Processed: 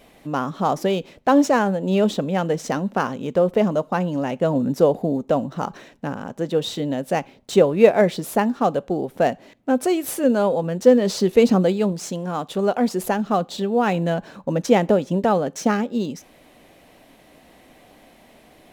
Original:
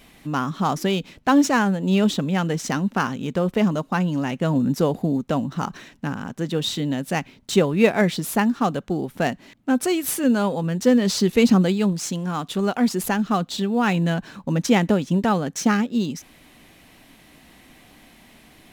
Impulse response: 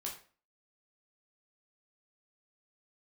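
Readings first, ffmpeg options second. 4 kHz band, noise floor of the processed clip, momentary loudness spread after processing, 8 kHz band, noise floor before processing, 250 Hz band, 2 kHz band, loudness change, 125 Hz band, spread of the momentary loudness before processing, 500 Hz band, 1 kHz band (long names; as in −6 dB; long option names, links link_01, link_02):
−3.5 dB, −52 dBFS, 11 LU, −4.0 dB, −52 dBFS, −1.5 dB, −2.5 dB, +1.0 dB, −2.5 dB, 9 LU, +5.5 dB, +2.0 dB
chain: -filter_complex "[0:a]equalizer=frequency=560:width=1.1:gain=11.5,asplit=2[link_01][link_02];[1:a]atrim=start_sample=2205[link_03];[link_02][link_03]afir=irnorm=-1:irlink=0,volume=-19dB[link_04];[link_01][link_04]amix=inputs=2:normalize=0,volume=-4.5dB"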